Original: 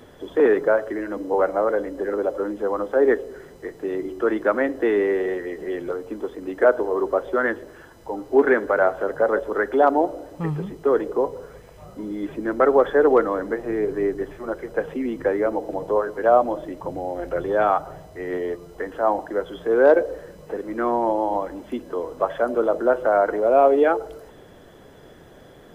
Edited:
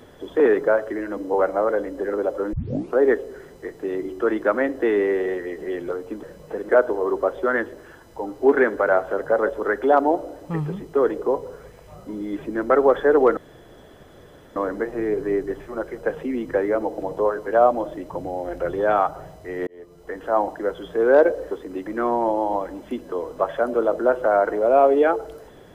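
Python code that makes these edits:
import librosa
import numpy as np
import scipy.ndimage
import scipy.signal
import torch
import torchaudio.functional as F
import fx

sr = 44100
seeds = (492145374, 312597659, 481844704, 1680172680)

y = fx.edit(x, sr, fx.tape_start(start_s=2.53, length_s=0.46),
    fx.swap(start_s=6.23, length_s=0.36, other_s=20.22, other_length_s=0.46),
    fx.insert_room_tone(at_s=13.27, length_s=1.19),
    fx.fade_in_span(start_s=18.38, length_s=0.61), tone=tone)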